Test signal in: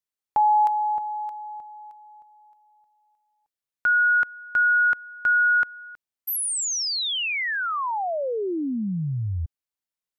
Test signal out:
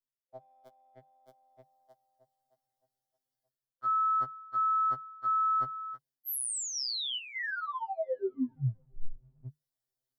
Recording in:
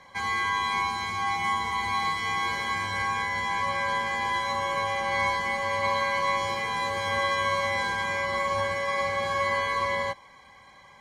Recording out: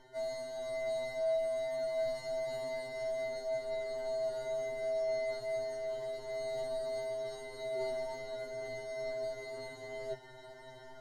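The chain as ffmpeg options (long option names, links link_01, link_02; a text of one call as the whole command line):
ffmpeg -i in.wav -filter_complex "[0:a]equalizer=frequency=2900:width_type=o:width=2.8:gain=-8,asplit=2[link_01][link_02];[link_02]adynamicsmooth=sensitivity=0.5:basefreq=980,volume=-1.5dB[link_03];[link_01][link_03]amix=inputs=2:normalize=0,afreqshift=-150,superequalizer=8b=1.41:11b=1.41:12b=0.316:13b=1.58:14b=1.78,areverse,acompressor=threshold=-35dB:ratio=5:attack=1.2:release=790:knee=1:detection=peak,areverse,afftfilt=real='re*2.45*eq(mod(b,6),0)':imag='im*2.45*eq(mod(b,6),0)':win_size=2048:overlap=0.75,volume=4dB" out.wav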